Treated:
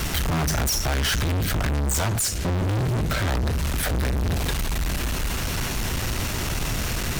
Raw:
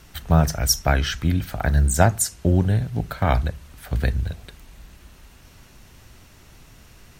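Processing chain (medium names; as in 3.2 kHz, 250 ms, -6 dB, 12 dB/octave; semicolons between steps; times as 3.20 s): compression, threshold -25 dBFS, peak gain reduction 14.5 dB; overload inside the chain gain 21.5 dB; 1.32–3.98 s: rotary cabinet horn 1.2 Hz; fuzz box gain 49 dB, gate -59 dBFS; trim -8.5 dB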